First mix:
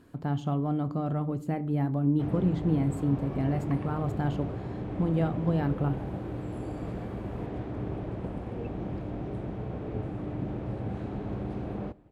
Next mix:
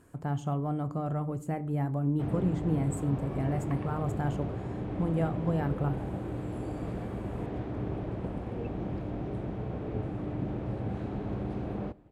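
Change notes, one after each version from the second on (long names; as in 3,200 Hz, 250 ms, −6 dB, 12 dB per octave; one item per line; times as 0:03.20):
speech: add graphic EQ with 10 bands 250 Hz −6 dB, 4,000 Hz −9 dB, 8,000 Hz +9 dB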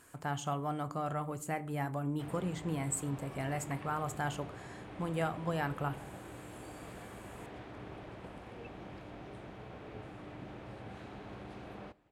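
background −7.0 dB
master: add tilt shelving filter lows −9 dB, about 750 Hz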